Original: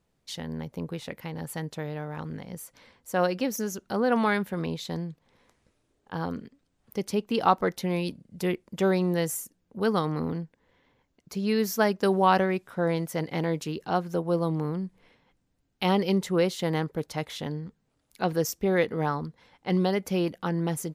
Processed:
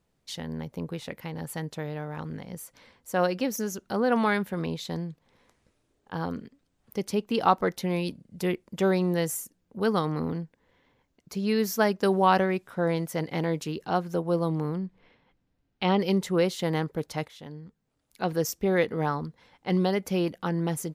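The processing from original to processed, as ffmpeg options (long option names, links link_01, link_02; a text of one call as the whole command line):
ffmpeg -i in.wav -filter_complex "[0:a]asettb=1/sr,asplit=3[link_01][link_02][link_03];[link_01]atrim=end=14.784[link_04];[link_02]atrim=start=14.78:end=16,asetpts=PTS-STARTPTS,afade=type=in:duration=0.004:curve=qsin,afade=type=out:start_time=1.216:duration=0.004:curve=qsin,lowpass=4300[link_05];[link_03]atrim=start=15.996[link_06];[link_04][link_05]acrossfade=duration=0.004:curve1=hsin:curve2=qsin[link_07];[link_07][link_06]acrossfade=duration=0.004:curve1=qsin:curve2=hsin,asplit=2[link_08][link_09];[link_08]atrim=end=17.28,asetpts=PTS-STARTPTS,afade=type=out:start_time=17.276:duration=0.004:curve=hsin:silence=0.223872[link_10];[link_09]atrim=start=17.28,asetpts=PTS-STARTPTS,afade=type=in:duration=1.23:silence=0.223872[link_11];[link_10][link_11]concat=n=2:v=0:a=1" out.wav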